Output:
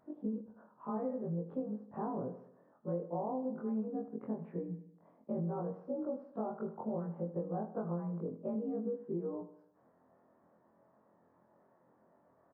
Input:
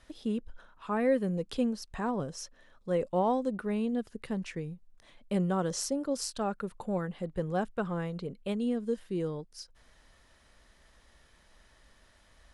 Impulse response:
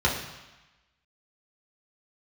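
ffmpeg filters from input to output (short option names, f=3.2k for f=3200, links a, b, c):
-filter_complex "[0:a]afftfilt=real='re':imag='-im':win_size=2048:overlap=0.75,highpass=f=150:w=0.5412,highpass=f=150:w=1.3066,acompressor=threshold=-39dB:ratio=12,lowpass=f=1k:w=0.5412,lowpass=f=1k:w=1.3066,asplit=2[a][b];[b]aecho=0:1:77|154|231|308|385:0.224|0.116|0.0605|0.0315|0.0164[c];[a][c]amix=inputs=2:normalize=0,volume=5.5dB"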